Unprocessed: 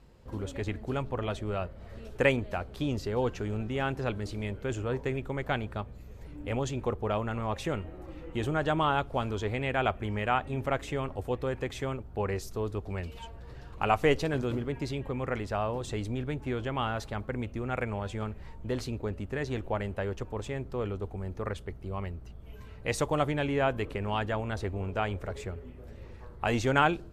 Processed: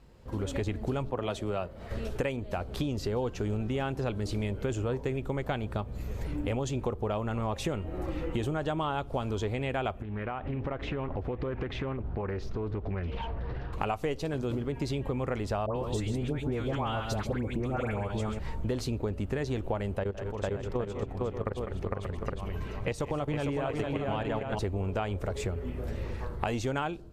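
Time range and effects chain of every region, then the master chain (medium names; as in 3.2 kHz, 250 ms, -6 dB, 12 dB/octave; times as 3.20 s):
1.10–1.91 s: bass shelf 120 Hz -10.5 dB + three bands expanded up and down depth 40%
10.02–13.73 s: compression 5:1, threshold -41 dBFS + distance through air 290 m + loudspeaker Doppler distortion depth 0.36 ms
15.66–18.39 s: phase dispersion highs, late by 101 ms, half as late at 1.3 kHz + delay 135 ms -8.5 dB
19.98–24.59 s: treble shelf 5.4 kHz -8 dB + level held to a coarse grid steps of 16 dB + multi-tap echo 163/201/455/581/814 ms -19.5/-13.5/-3.5/-14/-8 dB
whole clip: level rider gain up to 13 dB; dynamic bell 1.8 kHz, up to -5 dB, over -38 dBFS, Q 1.2; compression 6:1, threshold -29 dBFS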